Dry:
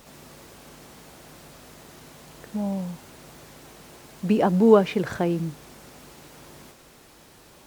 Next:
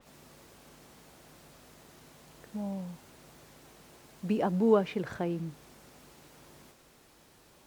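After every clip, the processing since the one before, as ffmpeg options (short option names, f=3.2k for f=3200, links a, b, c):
-af "adynamicequalizer=threshold=0.00398:dfrequency=4400:dqfactor=0.7:tfrequency=4400:tqfactor=0.7:attack=5:release=100:ratio=0.375:range=2:mode=cutabove:tftype=highshelf,volume=-8.5dB"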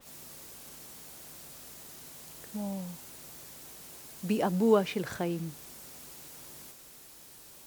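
-af "crystalizer=i=3:c=0"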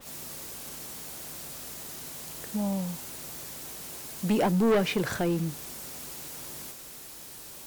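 -af "asoftclip=type=tanh:threshold=-26.5dB,volume=7.5dB"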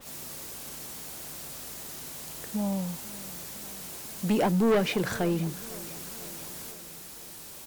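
-af "aecho=1:1:501|1002|1503|2004|2505:0.112|0.0651|0.0377|0.0219|0.0127"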